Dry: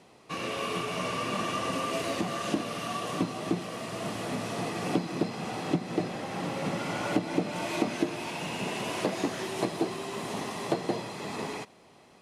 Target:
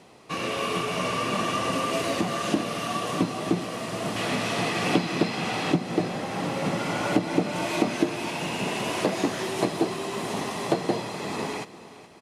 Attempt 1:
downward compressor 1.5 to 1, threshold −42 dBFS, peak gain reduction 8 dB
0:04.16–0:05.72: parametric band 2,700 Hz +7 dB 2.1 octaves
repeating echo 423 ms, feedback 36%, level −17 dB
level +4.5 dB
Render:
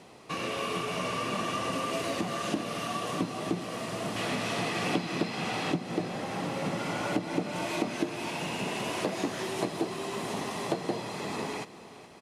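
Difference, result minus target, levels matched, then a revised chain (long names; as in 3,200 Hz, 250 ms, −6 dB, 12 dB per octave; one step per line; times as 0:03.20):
downward compressor: peak gain reduction +8 dB
0:04.16–0:05.72: parametric band 2,700 Hz +7 dB 2.1 octaves
repeating echo 423 ms, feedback 36%, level −17 dB
level +4.5 dB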